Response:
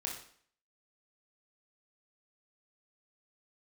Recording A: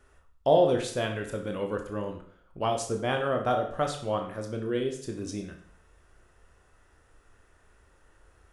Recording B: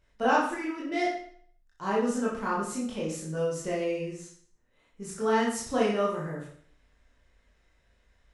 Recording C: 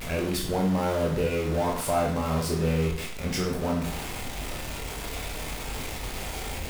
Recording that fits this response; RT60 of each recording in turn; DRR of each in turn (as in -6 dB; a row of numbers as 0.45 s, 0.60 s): C; 0.55 s, 0.55 s, 0.55 s; 3.0 dB, -5.5 dB, -1.5 dB